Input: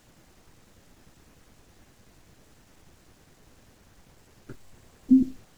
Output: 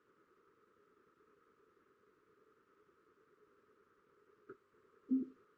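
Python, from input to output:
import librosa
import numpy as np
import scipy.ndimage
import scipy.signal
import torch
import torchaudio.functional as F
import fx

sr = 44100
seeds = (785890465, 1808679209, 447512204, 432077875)

y = fx.double_bandpass(x, sr, hz=730.0, octaves=1.6)
y = y * 10.0 ** (-1.0 / 20.0)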